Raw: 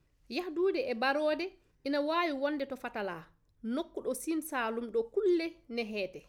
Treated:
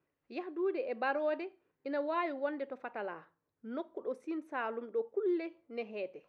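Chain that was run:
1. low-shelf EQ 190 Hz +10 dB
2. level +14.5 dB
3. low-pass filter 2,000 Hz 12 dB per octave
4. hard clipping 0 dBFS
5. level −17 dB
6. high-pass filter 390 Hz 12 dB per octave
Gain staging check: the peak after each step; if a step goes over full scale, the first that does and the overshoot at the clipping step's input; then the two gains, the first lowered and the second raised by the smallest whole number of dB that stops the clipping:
−18.0, −3.5, −4.5, −4.5, −21.5, −20.0 dBFS
no step passes full scale

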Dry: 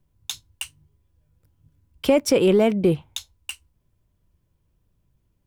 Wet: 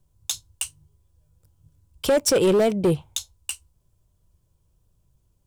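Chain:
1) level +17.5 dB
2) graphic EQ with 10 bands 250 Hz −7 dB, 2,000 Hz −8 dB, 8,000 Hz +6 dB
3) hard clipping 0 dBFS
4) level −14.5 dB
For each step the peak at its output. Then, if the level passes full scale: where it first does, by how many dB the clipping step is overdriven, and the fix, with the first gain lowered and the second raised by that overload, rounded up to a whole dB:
+11.0, +8.5, 0.0, −14.5 dBFS
step 1, 8.5 dB
step 1 +8.5 dB, step 4 −5.5 dB

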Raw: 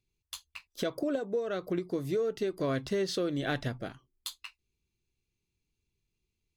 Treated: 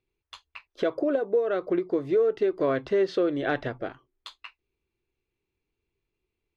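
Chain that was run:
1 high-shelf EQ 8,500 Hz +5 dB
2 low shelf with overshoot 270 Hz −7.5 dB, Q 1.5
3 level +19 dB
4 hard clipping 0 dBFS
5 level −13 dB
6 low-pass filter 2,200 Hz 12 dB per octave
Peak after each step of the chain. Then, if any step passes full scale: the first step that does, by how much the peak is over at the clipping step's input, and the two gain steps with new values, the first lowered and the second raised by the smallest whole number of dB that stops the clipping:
−17.5, −15.0, +4.0, 0.0, −13.0, −13.0 dBFS
step 3, 4.0 dB
step 3 +15 dB, step 5 −9 dB

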